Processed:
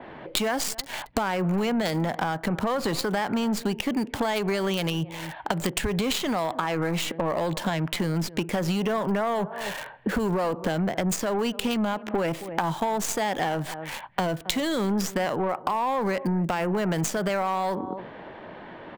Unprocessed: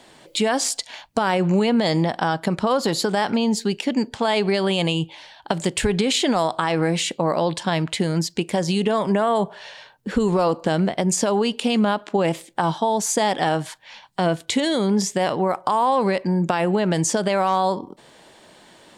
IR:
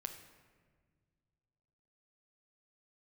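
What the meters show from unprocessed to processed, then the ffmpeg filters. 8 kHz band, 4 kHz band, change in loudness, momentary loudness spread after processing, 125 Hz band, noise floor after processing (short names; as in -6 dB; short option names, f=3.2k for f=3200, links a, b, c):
-7.0 dB, -6.0 dB, -5.5 dB, 6 LU, -4.5 dB, -43 dBFS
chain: -filter_complex "[0:a]asplit=2[a][b];[b]adelay=268.2,volume=-23dB,highshelf=f=4k:g=-6.04[c];[a][c]amix=inputs=2:normalize=0,acrossover=split=110|1100|2400[d][e][f][g];[e]asoftclip=type=tanh:threshold=-20.5dB[h];[g]acrusher=bits=4:dc=4:mix=0:aa=0.000001[i];[d][h][f][i]amix=inputs=4:normalize=0,acompressor=threshold=-33dB:ratio=6,adynamicequalizer=threshold=0.00224:dfrequency=4300:dqfactor=0.7:tfrequency=4300:tqfactor=0.7:attack=5:release=100:ratio=0.375:range=1.5:mode=cutabove:tftype=highshelf,volume=9dB"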